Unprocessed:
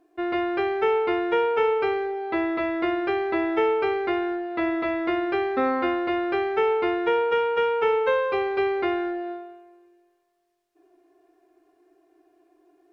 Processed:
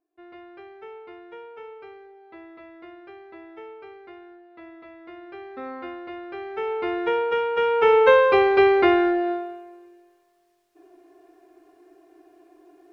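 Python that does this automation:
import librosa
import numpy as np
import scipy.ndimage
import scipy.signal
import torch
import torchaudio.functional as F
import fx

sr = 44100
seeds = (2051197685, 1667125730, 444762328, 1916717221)

y = fx.gain(x, sr, db=fx.line((4.97, -19.5), (5.72, -11.5), (6.3, -11.5), (6.98, -1.0), (7.51, -1.0), (8.03, 7.5)))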